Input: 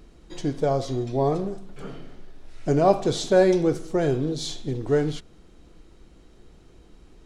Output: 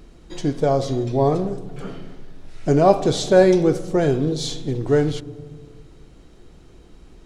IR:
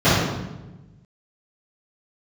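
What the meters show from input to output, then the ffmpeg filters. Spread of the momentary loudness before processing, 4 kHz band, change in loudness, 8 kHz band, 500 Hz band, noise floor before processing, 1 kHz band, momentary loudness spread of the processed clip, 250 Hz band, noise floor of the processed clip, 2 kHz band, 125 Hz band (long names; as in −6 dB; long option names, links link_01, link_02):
17 LU, +4.0 dB, +4.5 dB, +4.0 dB, +4.0 dB, −52 dBFS, +4.0 dB, 18 LU, +4.5 dB, −47 dBFS, +4.0 dB, +5.0 dB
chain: -filter_complex "[0:a]asplit=2[link_01][link_02];[1:a]atrim=start_sample=2205,asetrate=28665,aresample=44100,lowpass=1500[link_03];[link_02][link_03]afir=irnorm=-1:irlink=0,volume=-44dB[link_04];[link_01][link_04]amix=inputs=2:normalize=0,volume=4dB"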